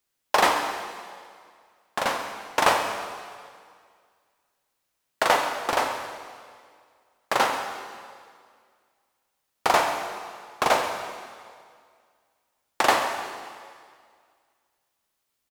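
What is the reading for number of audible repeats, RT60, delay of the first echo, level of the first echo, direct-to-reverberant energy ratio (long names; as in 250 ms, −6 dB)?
1, 2.0 s, 135 ms, −14.5 dB, 4.0 dB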